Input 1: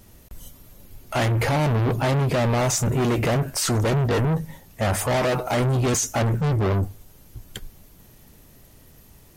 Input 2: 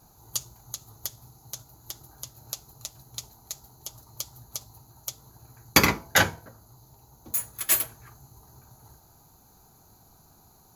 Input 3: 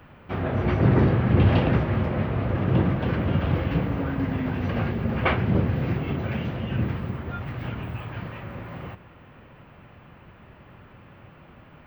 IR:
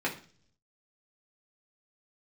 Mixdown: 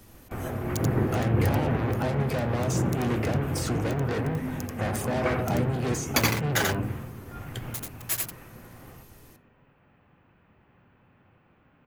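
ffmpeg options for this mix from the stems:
-filter_complex "[0:a]acrossover=split=110|780[s0][s1][s2];[s0]acompressor=threshold=0.00891:ratio=4[s3];[s1]acompressor=threshold=0.0631:ratio=4[s4];[s2]acompressor=threshold=0.0251:ratio=4[s5];[s3][s4][s5]amix=inputs=3:normalize=0,asoftclip=type=tanh:threshold=0.0668,volume=0.708,asplit=3[s6][s7][s8];[s7]volume=0.224[s9];[1:a]aeval=exprs='val(0)*gte(abs(val(0)),0.0944)':c=same,adelay=400,volume=0.473,asplit=2[s10][s11];[s11]volume=0.708[s12];[2:a]acrossover=split=2800[s13][s14];[s14]acompressor=threshold=0.00251:ratio=4:attack=1:release=60[s15];[s13][s15]amix=inputs=2:normalize=0,volume=0.376,asplit=3[s16][s17][s18];[s17]volume=0.178[s19];[s18]volume=0.473[s20];[s8]apad=whole_len=523432[s21];[s16][s21]sidechaingate=range=0.0224:threshold=0.00316:ratio=16:detection=peak[s22];[3:a]atrim=start_sample=2205[s23];[s9][s19]amix=inputs=2:normalize=0[s24];[s24][s23]afir=irnorm=-1:irlink=0[s25];[s12][s20]amix=inputs=2:normalize=0,aecho=0:1:86:1[s26];[s6][s10][s22][s25][s26]amix=inputs=5:normalize=0"

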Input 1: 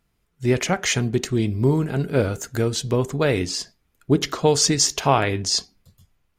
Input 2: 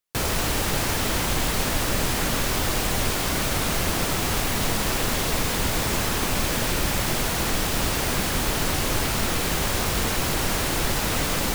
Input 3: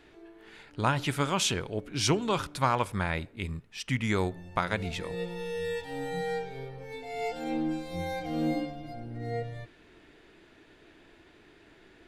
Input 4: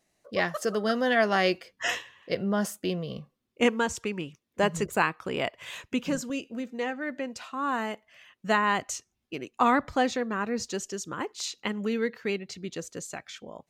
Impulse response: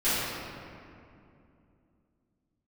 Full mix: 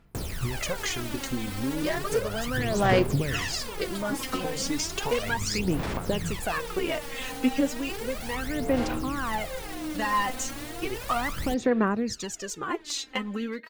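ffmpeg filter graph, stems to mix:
-filter_complex "[0:a]acompressor=threshold=0.0398:ratio=6,volume=1[s0];[1:a]equalizer=f=14000:w=4.8:g=-6,alimiter=limit=0.075:level=0:latency=1,volume=0.562[s1];[2:a]acompressor=threshold=0.0251:ratio=6,adelay=1400,volume=0.891[s2];[3:a]adelay=1500,volume=1.12[s3];[s1][s2]amix=inputs=2:normalize=0,acompressor=threshold=0.0158:ratio=6,volume=1[s4];[s0][s3]amix=inputs=2:normalize=0,asoftclip=type=hard:threshold=0.126,acompressor=threshold=0.0398:ratio=6,volume=1[s5];[s4][s5]amix=inputs=2:normalize=0,aphaser=in_gain=1:out_gain=1:delay=3.9:decay=0.72:speed=0.34:type=sinusoidal,equalizer=f=6500:w=1.5:g=-2.5"

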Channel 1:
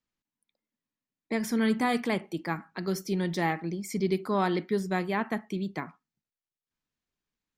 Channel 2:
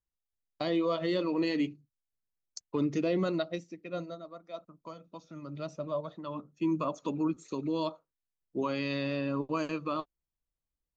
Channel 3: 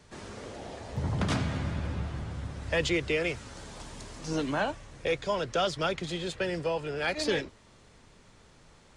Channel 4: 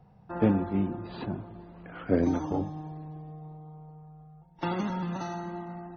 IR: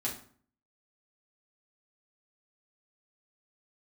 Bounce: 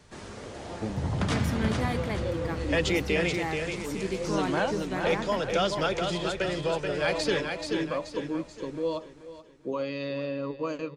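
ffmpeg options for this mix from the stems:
-filter_complex "[0:a]highpass=f=170:w=0.5412,highpass=f=170:w=1.3066,volume=0.562,asplit=3[s0][s1][s2];[s1]volume=0.0668[s3];[1:a]equalizer=f=510:w=5.9:g=13.5,adelay=1100,volume=0.75,asplit=2[s4][s5];[s5]volume=0.178[s6];[2:a]volume=1.12,asplit=2[s7][s8];[s8]volume=0.562[s9];[3:a]tremolo=f=0.68:d=0.88,adelay=400,volume=0.75[s10];[s2]apad=whole_len=532106[s11];[s4][s11]sidechaincompress=threshold=0.00501:ratio=8:attack=16:release=170[s12];[s3][s6][s9]amix=inputs=3:normalize=0,aecho=0:1:431|862|1293|1724|2155|2586:1|0.4|0.16|0.064|0.0256|0.0102[s13];[s0][s12][s7][s10][s13]amix=inputs=5:normalize=0"

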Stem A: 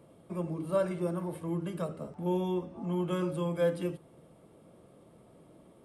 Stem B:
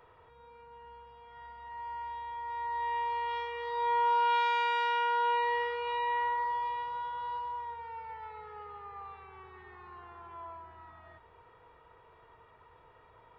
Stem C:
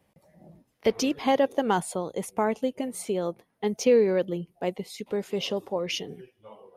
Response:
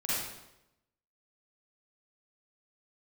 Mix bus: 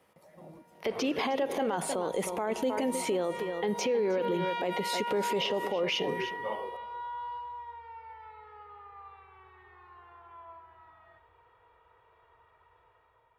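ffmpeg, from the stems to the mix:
-filter_complex "[0:a]volume=0.237[s0];[1:a]asubboost=boost=5:cutoff=92,volume=0.188,asplit=2[s1][s2];[s2]volume=0.531[s3];[2:a]acrossover=split=3300[s4][s5];[s5]acompressor=threshold=0.00447:ratio=4:attack=1:release=60[s6];[s4][s6]amix=inputs=2:normalize=0,alimiter=limit=0.141:level=0:latency=1:release=19,volume=1.33,asplit=4[s7][s8][s9][s10];[s8]volume=0.0794[s11];[s9]volume=0.376[s12];[s10]apad=whole_len=257742[s13];[s0][s13]sidechaingate=range=0.0224:threshold=0.00282:ratio=16:detection=peak[s14];[s1][s7]amix=inputs=2:normalize=0,dynaudnorm=f=610:g=3:m=3.16,alimiter=limit=0.188:level=0:latency=1:release=33,volume=1[s15];[3:a]atrim=start_sample=2205[s16];[s3][s11]amix=inputs=2:normalize=0[s17];[s17][s16]afir=irnorm=-1:irlink=0[s18];[s12]aecho=0:1:312:1[s19];[s14][s15][s18][s19]amix=inputs=4:normalize=0,highpass=54,bass=f=250:g=-10,treble=f=4000:g=-1,alimiter=limit=0.0841:level=0:latency=1:release=61"

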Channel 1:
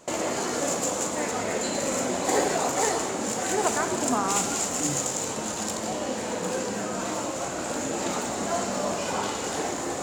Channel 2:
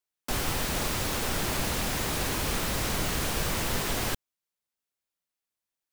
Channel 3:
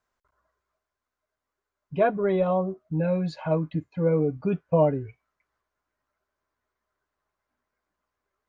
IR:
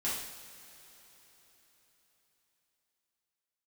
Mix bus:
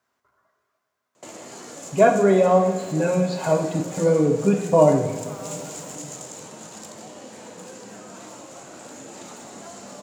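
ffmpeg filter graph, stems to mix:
-filter_complex "[0:a]acrossover=split=200|3000[s0][s1][s2];[s1]acompressor=threshold=0.0355:ratio=6[s3];[s0][s3][s2]amix=inputs=3:normalize=0,adelay=1150,volume=0.335[s4];[1:a]alimiter=level_in=1.5:limit=0.0631:level=0:latency=1,volume=0.668,adelay=1800,volume=0.237[s5];[2:a]volume=1.33,asplit=3[s6][s7][s8];[s7]volume=0.631[s9];[s8]apad=whole_len=340628[s10];[s5][s10]sidechaincompress=threshold=0.02:ratio=8:attack=16:release=222[s11];[3:a]atrim=start_sample=2205[s12];[s9][s12]afir=irnorm=-1:irlink=0[s13];[s4][s11][s6][s13]amix=inputs=4:normalize=0,highpass=f=96:w=0.5412,highpass=f=96:w=1.3066"

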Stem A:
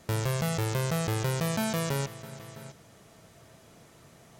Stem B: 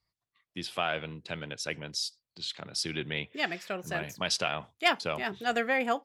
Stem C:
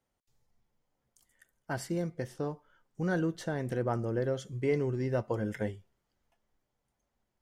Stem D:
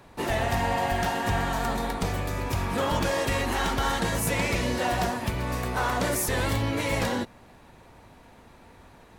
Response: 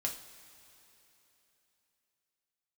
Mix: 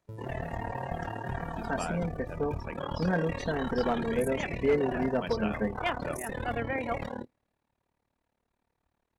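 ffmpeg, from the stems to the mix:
-filter_complex "[0:a]acompressor=threshold=0.0158:ratio=1.5,volume=0.335,asplit=2[s0][s1];[s1]volume=0.0841[s2];[1:a]aemphasis=mode=reproduction:type=75fm,adelay=1000,volume=0.562[s3];[2:a]aecho=1:1:4.4:0.95,acrusher=bits=10:mix=0:aa=0.000001,volume=0.841,asplit=3[s4][s5][s6];[s5]volume=0.237[s7];[3:a]tremolo=f=37:d=1,volume=0.501,asplit=2[s8][s9];[s9]volume=0.075[s10];[s6]apad=whole_len=193702[s11];[s0][s11]sidechaincompress=threshold=0.0158:ratio=4:attack=6.6:release=166[s12];[4:a]atrim=start_sample=2205[s13];[s2][s7][s10]amix=inputs=3:normalize=0[s14];[s14][s13]afir=irnorm=-1:irlink=0[s15];[s12][s3][s4][s8][s15]amix=inputs=5:normalize=0,afftdn=nr=19:nf=-39,aeval=exprs='clip(val(0),-1,0.106)':c=same"

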